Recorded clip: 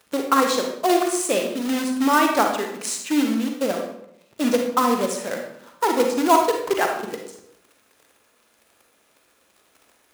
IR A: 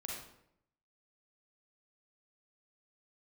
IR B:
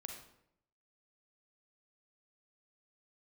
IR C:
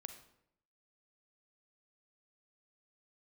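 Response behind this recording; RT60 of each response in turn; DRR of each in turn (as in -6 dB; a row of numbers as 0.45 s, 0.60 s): B; 0.75 s, 0.75 s, 0.75 s; -3.0 dB, 2.5 dB, 7.5 dB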